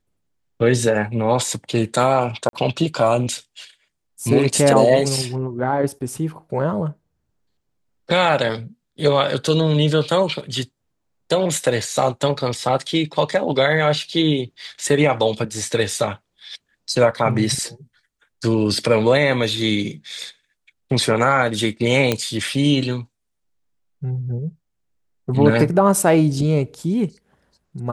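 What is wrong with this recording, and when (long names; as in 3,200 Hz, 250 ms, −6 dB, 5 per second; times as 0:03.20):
0:02.49–0:02.53: drop-out 42 ms
0:22.12: click −4 dBFS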